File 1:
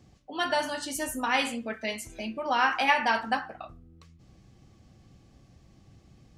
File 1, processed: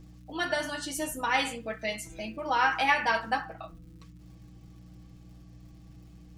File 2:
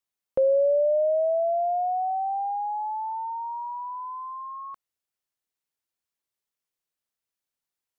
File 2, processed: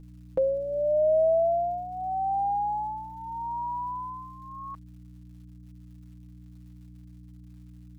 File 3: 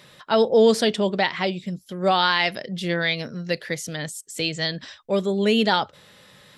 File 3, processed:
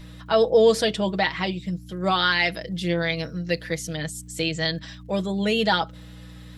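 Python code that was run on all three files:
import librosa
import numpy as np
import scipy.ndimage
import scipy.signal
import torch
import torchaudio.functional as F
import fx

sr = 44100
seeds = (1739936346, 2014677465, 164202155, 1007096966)

y = fx.add_hum(x, sr, base_hz=60, snr_db=16)
y = fx.dmg_crackle(y, sr, seeds[0], per_s=190.0, level_db=-53.0)
y = y + 0.65 * np.pad(y, (int(6.2 * sr / 1000.0), 0))[:len(y)]
y = F.gain(torch.from_numpy(y), -2.5).numpy()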